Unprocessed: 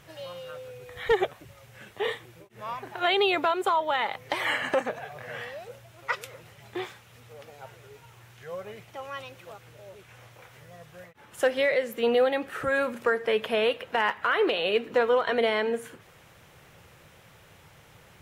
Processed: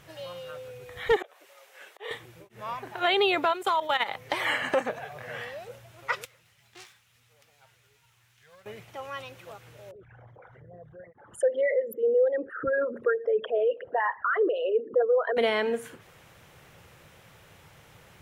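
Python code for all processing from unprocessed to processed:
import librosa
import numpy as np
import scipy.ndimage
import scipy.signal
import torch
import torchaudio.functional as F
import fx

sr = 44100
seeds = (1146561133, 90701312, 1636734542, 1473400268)

y = fx.chain(x, sr, fx.highpass(hz=430.0, slope=24),
    fx.auto_swell(attack_ms=245.0), at=(1.16, 2.11))
y = fx.chain(y, sr, fx.high_shelf(hz=2100.0, db=8.0),
    fx.level_steps(step_db=12), at=(3.53, 4.09))
y = fx.chain(y, sr, fx.self_delay(depth_ms=0.27),
    fx.tone_stack(knobs='5-5-5'), at=(6.25, 8.66))
y = fx.chain(y, sr, fx.envelope_sharpen(power=3.0),
    fx.peak_eq(hz=2500.0, db=-14.0, octaves=0.46), at=(9.91, 15.37))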